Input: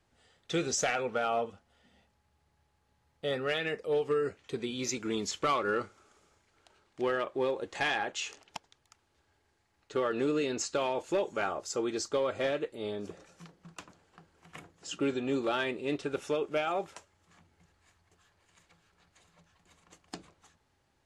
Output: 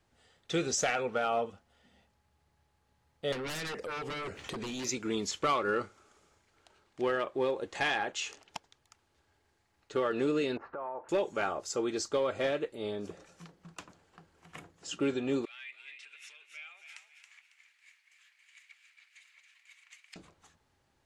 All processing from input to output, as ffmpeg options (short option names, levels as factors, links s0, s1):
-filter_complex "[0:a]asettb=1/sr,asplit=3[s0][s1][s2];[s0]atrim=end=3.324[s3];[s1]atrim=start=3.32:end=4.85,asetpts=PTS-STARTPTS,afade=t=in:d=0.004:c=qsin,afade=t=out:st=1.526:d=0.004:c=qsin,aeval=exprs='0.1*sin(PI/2*4.47*val(0)/0.1)':c=same,acompressor=threshold=0.0141:ratio=8:attack=3.2:release=140:knee=1:detection=peak[s4];[s2]atrim=start=4.846[s5];[s3][s4]acrossfade=d=0.004:c1=hsin:c2=qsin[s6];[s6][s5]acrossfade=d=0.004:c1=qsin:c2=hsin,asettb=1/sr,asplit=3[s7][s8][s9];[s7]atrim=end=10.574[s10];[s8]atrim=start=10.57:end=11.09,asetpts=PTS-STARTPTS,afade=t=in:d=0.004:c=qsin,afade=t=out:st=0.516:d=0.004:c=qsin,lowpass=f=1600:w=0.5412,lowpass=f=1600:w=1.3066,acompressor=threshold=0.00355:ratio=4:attack=3.2:release=140:knee=1:detection=peak,equalizer=f=1000:w=0.58:g=13.5[s11];[s9]atrim=start=11.086[s12];[s10][s11]acrossfade=d=0.004:c1=hsin:c2=qsin[s13];[s13][s12]acrossfade=d=0.004:c1=qsin:c2=hsin,asettb=1/sr,asplit=3[s14][s15][s16];[s14]atrim=end=15.454[s17];[s15]atrim=start=15.45:end=20.16,asetpts=PTS-STARTPTS,afade=t=in:d=0.004:c=qsin,afade=t=out:st=4.706:d=0.004:c=qsin,acompressor=threshold=0.00355:ratio=4:attack=3.2:release=140:knee=1:detection=peak,highpass=f=2200:t=q:w=4.7,asplit=5[s18][s19][s20][s21][s22];[s19]adelay=275,afreqshift=70,volume=0.422[s23];[s20]adelay=550,afreqshift=140,volume=0.135[s24];[s21]adelay=825,afreqshift=210,volume=0.0432[s25];[s22]adelay=1100,afreqshift=280,volume=0.0138[s26];[s18][s23][s24][s25][s26]amix=inputs=5:normalize=0,atrim=end_sample=207711[s27];[s16]atrim=start=20.156[s28];[s17][s27]acrossfade=d=0.004:c1=hsin:c2=qsin[s29];[s29][s28]acrossfade=d=0.004:c1=qsin:c2=hsin"